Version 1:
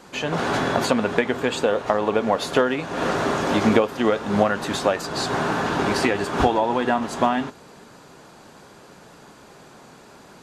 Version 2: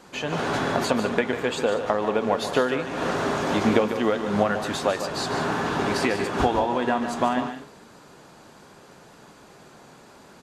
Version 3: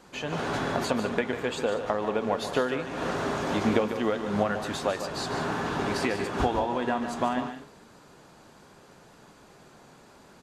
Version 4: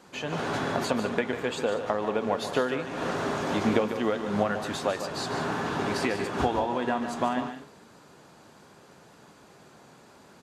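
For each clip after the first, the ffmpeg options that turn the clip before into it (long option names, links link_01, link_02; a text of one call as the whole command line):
ffmpeg -i in.wav -af "aecho=1:1:147|193:0.335|0.178,volume=-3dB" out.wav
ffmpeg -i in.wav -af "lowshelf=frequency=73:gain=6.5,volume=-4.5dB" out.wav
ffmpeg -i in.wav -af "highpass=74" out.wav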